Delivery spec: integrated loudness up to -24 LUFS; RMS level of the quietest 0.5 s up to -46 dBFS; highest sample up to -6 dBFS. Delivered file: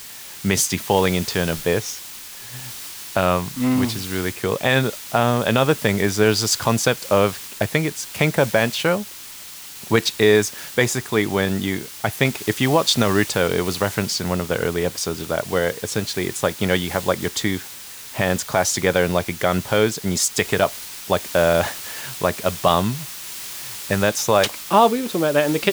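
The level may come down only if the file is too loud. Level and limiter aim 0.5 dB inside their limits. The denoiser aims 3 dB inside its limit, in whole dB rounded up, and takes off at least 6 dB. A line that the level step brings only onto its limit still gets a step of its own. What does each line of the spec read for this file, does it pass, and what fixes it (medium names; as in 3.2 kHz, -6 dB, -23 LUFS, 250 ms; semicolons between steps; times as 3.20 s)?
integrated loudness -20.5 LUFS: fail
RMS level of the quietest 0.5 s -38 dBFS: fail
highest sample -3.0 dBFS: fail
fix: noise reduction 7 dB, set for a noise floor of -38 dBFS; trim -4 dB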